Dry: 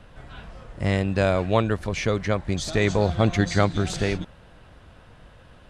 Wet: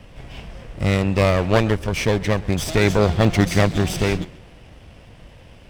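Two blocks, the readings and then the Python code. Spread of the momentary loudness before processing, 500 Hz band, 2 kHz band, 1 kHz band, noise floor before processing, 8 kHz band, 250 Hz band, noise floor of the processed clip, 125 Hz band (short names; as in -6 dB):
18 LU, +3.5 dB, +4.0 dB, +3.0 dB, -50 dBFS, +4.5 dB, +4.5 dB, -45 dBFS, +4.5 dB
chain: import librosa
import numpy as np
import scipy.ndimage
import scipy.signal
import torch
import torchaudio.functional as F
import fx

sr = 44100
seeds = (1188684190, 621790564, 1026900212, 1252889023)

y = fx.lower_of_two(x, sr, delay_ms=0.36)
y = fx.echo_warbled(y, sr, ms=133, feedback_pct=32, rate_hz=2.8, cents=157, wet_db=-21)
y = y * librosa.db_to_amplitude(5.5)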